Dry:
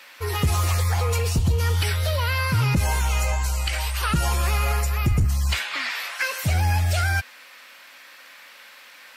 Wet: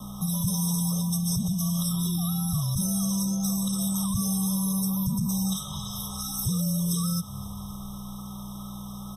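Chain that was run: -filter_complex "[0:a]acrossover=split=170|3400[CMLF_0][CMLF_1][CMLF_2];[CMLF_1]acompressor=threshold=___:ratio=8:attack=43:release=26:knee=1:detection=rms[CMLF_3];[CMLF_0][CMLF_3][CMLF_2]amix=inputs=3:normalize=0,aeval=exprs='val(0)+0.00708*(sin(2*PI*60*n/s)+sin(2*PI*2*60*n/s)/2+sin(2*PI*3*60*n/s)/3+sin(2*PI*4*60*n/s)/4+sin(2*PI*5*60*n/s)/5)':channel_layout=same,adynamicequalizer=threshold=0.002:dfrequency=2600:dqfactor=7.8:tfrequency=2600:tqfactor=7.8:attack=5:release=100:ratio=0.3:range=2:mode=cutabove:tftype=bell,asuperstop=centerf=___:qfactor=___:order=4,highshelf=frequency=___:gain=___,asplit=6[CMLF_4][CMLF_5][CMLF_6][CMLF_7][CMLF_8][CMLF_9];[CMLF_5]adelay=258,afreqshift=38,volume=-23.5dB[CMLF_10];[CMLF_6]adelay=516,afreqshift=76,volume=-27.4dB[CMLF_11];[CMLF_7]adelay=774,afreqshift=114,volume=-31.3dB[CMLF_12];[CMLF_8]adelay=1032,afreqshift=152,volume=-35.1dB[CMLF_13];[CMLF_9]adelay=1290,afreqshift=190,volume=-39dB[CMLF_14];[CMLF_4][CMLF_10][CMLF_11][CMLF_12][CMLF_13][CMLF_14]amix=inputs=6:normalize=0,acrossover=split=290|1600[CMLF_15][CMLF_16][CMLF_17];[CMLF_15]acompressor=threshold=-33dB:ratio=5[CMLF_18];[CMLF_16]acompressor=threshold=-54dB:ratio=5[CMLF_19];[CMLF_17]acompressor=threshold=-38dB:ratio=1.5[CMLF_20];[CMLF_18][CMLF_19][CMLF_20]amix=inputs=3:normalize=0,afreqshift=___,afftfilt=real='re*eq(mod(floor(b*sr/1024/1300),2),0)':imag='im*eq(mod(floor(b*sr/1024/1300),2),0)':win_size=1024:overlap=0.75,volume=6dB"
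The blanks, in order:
-43dB, 2900, 1.5, 11000, 8.5, -260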